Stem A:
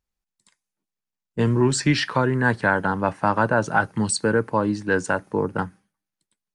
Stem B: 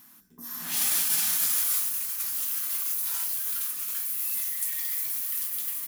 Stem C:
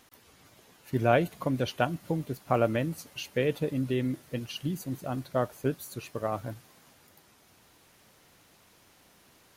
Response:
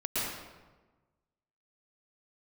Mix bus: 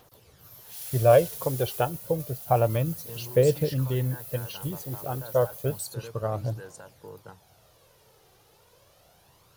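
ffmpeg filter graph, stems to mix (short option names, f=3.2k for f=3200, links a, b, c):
-filter_complex "[0:a]alimiter=limit=-15dB:level=0:latency=1:release=209,crystalizer=i=4:c=0,adelay=1700,volume=-19.5dB[a];[1:a]highpass=f=1.5k:w=0.5412,highpass=f=1.5k:w=1.3066,volume=-12dB[b];[2:a]aphaser=in_gain=1:out_gain=1:delay=2.6:decay=0.45:speed=0.3:type=triangular,volume=1dB[c];[a][b][c]amix=inputs=3:normalize=0,equalizer=f=125:t=o:w=1:g=6,equalizer=f=250:t=o:w=1:g=-10,equalizer=f=500:t=o:w=1:g=6,equalizer=f=2k:t=o:w=1:g=-7,equalizer=f=8k:t=o:w=1:g=-4"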